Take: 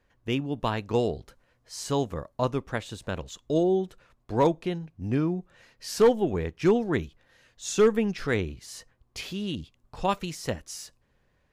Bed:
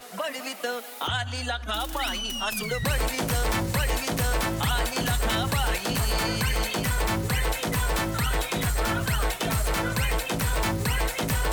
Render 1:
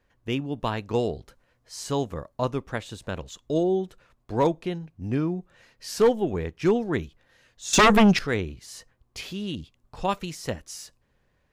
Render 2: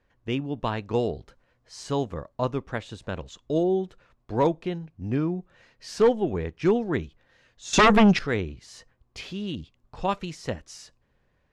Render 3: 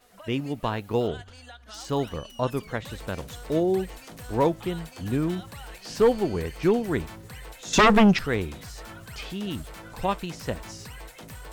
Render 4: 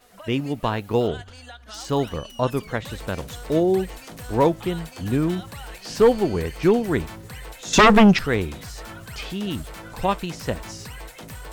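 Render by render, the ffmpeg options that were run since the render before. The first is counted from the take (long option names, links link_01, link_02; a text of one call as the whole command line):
ffmpeg -i in.wav -filter_complex "[0:a]asettb=1/sr,asplit=3[link_01][link_02][link_03];[link_01]atrim=end=7.734[link_04];[link_02]atrim=start=7.73:end=8.19,asetpts=PTS-STARTPTS,afade=type=in:duration=0.004:curve=qsin,afade=type=out:start_time=0.456:duration=0.004:curve=qsin,aeval=exprs='0.251*sin(PI/2*3.55*val(0)/0.251)':channel_layout=same[link_05];[link_03]atrim=start=8.186[link_06];[link_04][link_05]acrossfade=duration=0.004:curve1=hsin:curve2=qsin[link_07];[link_07][link_06]acrossfade=duration=0.004:curve1=qsin:curve2=hsin" out.wav
ffmpeg -i in.wav -af "lowpass=7900,highshelf=frequency=4800:gain=-5.5" out.wav
ffmpeg -i in.wav -i bed.wav -filter_complex "[1:a]volume=-16.5dB[link_01];[0:a][link_01]amix=inputs=2:normalize=0" out.wav
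ffmpeg -i in.wav -af "volume=4dB" out.wav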